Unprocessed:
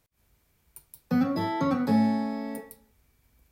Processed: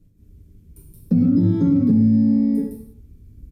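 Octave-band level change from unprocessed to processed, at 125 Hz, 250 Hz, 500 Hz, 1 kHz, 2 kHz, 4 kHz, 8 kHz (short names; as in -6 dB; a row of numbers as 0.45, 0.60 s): +15.0 dB, +10.0 dB, +0.5 dB, under -15 dB, under -15 dB, under -10 dB, n/a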